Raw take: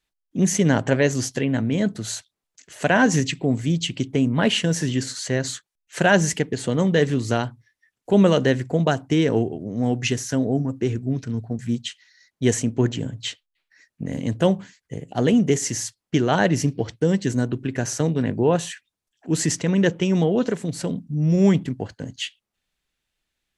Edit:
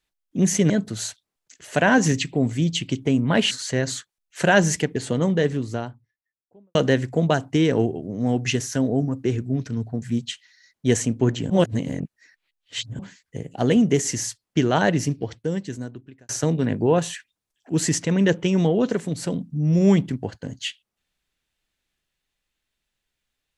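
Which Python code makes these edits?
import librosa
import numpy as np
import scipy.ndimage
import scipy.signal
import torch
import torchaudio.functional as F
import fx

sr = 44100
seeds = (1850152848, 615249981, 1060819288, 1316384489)

y = fx.studio_fade_out(x, sr, start_s=6.42, length_s=1.9)
y = fx.edit(y, sr, fx.cut(start_s=0.7, length_s=1.08),
    fx.cut(start_s=4.59, length_s=0.49),
    fx.reverse_span(start_s=13.07, length_s=1.49),
    fx.fade_out_span(start_s=16.3, length_s=1.56), tone=tone)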